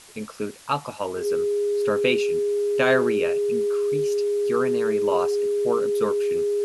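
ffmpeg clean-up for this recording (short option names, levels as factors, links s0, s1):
-af "bandreject=f=410:w=30,afftdn=nr=30:nf=-35"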